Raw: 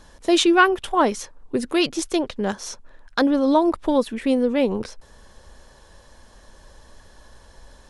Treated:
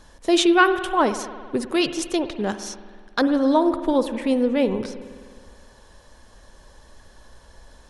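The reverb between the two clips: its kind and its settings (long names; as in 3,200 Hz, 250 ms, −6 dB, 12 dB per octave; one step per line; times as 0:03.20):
spring reverb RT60 1.8 s, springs 52 ms, chirp 60 ms, DRR 10.5 dB
level −1 dB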